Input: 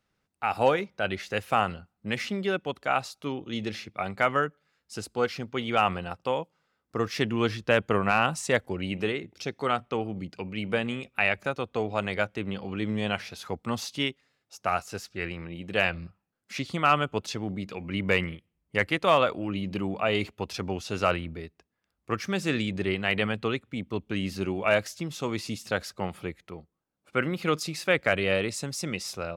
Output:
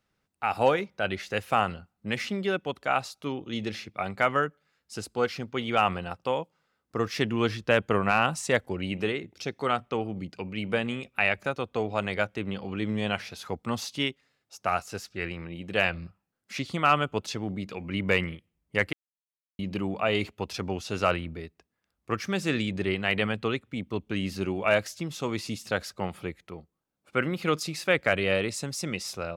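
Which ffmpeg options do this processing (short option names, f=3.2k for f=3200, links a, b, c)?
-filter_complex "[0:a]asplit=3[a][b][c];[a]atrim=end=18.93,asetpts=PTS-STARTPTS,afade=t=out:st=18.926:d=0.004:c=hsin[d];[b]atrim=start=18.93:end=19.59,asetpts=PTS-STARTPTS,volume=0[e];[c]atrim=start=19.59,asetpts=PTS-STARTPTS,afade=t=in:d=0.004:c=hsin[f];[d][e][f]concat=n=3:v=0:a=1"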